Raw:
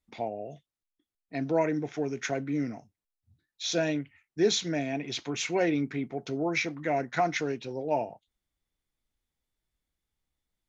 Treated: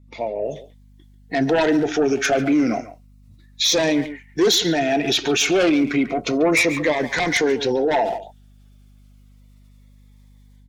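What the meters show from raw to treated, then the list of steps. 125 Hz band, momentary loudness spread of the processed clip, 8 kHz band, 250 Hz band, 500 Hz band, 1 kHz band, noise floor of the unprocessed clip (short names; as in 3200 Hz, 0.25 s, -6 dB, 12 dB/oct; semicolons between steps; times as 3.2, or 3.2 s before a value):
+5.5 dB, 10 LU, n/a, +11.0 dB, +10.5 dB, +8.5 dB, under -85 dBFS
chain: bin magnitudes rounded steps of 15 dB; high shelf 5700 Hz -5 dB; AGC gain up to 15 dB; tone controls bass -14 dB, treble 0 dB; added harmonics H 5 -8 dB, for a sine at -3.5 dBFS; hum 50 Hz, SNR 34 dB; speakerphone echo 0.14 s, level -14 dB; limiter -11 dBFS, peak gain reduction 8.5 dB; cascading phaser falling 0.31 Hz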